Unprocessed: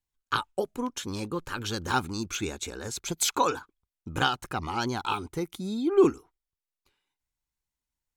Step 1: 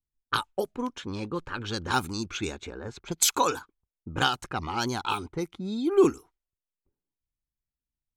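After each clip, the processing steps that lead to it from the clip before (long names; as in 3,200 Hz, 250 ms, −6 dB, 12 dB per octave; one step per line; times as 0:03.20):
low-pass that shuts in the quiet parts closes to 330 Hz, open at −25 dBFS
high-shelf EQ 5,700 Hz +8.5 dB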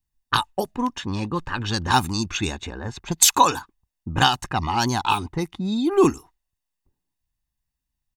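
comb filter 1.1 ms, depth 50%
level +6.5 dB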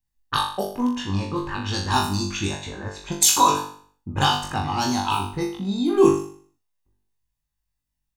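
dynamic equaliser 1,900 Hz, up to −5 dB, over −33 dBFS, Q 1.3
on a send: flutter between parallel walls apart 3.5 metres, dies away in 0.5 s
on the sum: level −3.5 dB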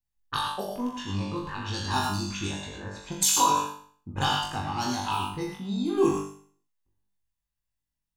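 reverb whose tail is shaped and stops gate 130 ms rising, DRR 3 dB
level −7 dB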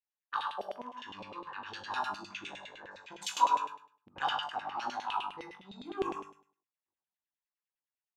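auto-filter band-pass saw down 9.8 Hz 560–3,000 Hz
mains-hum notches 50/100/150 Hz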